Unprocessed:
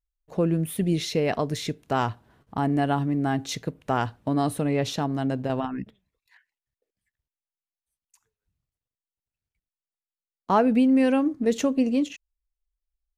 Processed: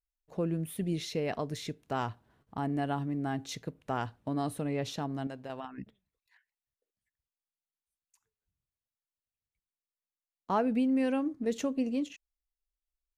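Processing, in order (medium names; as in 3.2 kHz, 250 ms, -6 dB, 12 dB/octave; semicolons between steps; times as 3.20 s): 5.27–5.78 s: bass shelf 450 Hz -11 dB; trim -8.5 dB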